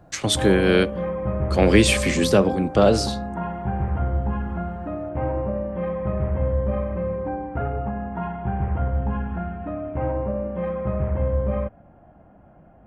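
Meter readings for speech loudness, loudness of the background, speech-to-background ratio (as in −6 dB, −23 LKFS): −19.5 LKFS, −26.5 LKFS, 7.0 dB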